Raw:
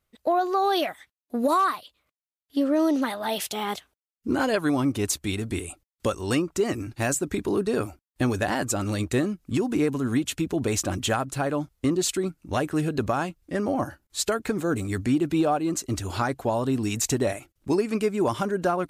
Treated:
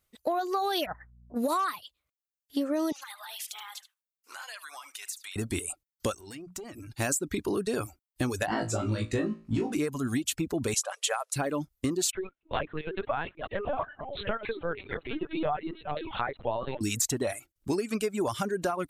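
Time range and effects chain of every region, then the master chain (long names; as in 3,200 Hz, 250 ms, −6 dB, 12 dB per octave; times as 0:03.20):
0:00.85–0:01.35: Butterworth low-pass 1,600 Hz 48 dB per octave + compressor whose output falls as the input rises −38 dBFS + hum with harmonics 60 Hz, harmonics 4, −51 dBFS −7 dB per octave
0:02.92–0:05.36: high-pass filter 970 Hz 24 dB per octave + downward compressor, threshold −39 dBFS + single-tap delay 75 ms −8 dB
0:06.15–0:06.90: mains-hum notches 60/120/180 Hz + downward compressor 10 to 1, threshold −34 dBFS + tube saturation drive 31 dB, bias 0.45
0:08.46–0:09.73: mu-law and A-law mismatch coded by mu + head-to-tape spacing loss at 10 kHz 20 dB + flutter between parallel walls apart 3.1 metres, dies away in 0.38 s
0:10.74–0:11.36: one scale factor per block 7 bits + linear-phase brick-wall band-pass 430–12,000 Hz
0:12.11–0:16.81: delay that plays each chunk backwards 451 ms, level −8.5 dB + high-pass filter 390 Hz 24 dB per octave + linear-prediction vocoder at 8 kHz pitch kept
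whole clip: reverb reduction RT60 0.72 s; high-shelf EQ 3,700 Hz +7.5 dB; downward compressor 4 to 1, threshold −24 dBFS; level −1.5 dB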